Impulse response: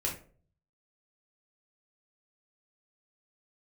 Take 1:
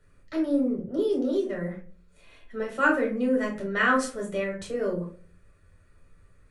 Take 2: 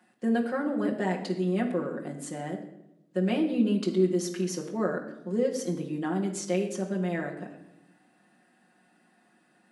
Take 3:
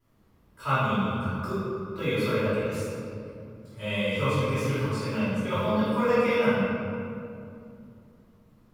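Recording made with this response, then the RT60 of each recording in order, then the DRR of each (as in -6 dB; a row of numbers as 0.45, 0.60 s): 1; 0.45, 0.85, 2.6 s; -2.5, -2.5, -15.0 dB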